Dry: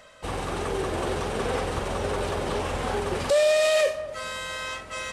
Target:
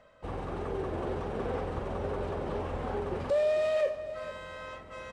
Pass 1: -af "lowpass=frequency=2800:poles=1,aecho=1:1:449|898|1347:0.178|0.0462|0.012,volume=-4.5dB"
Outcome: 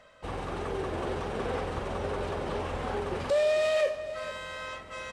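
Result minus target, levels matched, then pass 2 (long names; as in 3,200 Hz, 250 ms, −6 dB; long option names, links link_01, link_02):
2,000 Hz band +4.0 dB
-af "lowpass=frequency=870:poles=1,aecho=1:1:449|898|1347:0.178|0.0462|0.012,volume=-4.5dB"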